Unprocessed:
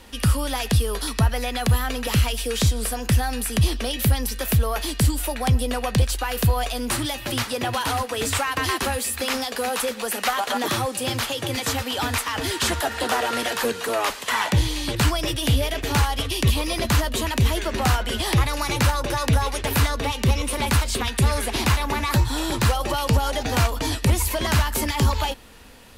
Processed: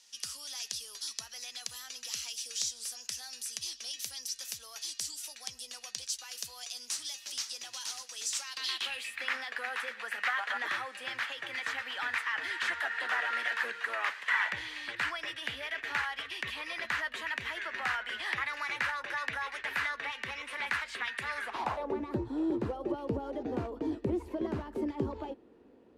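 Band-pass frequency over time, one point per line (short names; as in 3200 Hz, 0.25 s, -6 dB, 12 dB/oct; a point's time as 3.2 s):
band-pass, Q 3.2
8.38 s 5900 Hz
9.29 s 1800 Hz
21.38 s 1800 Hz
21.98 s 350 Hz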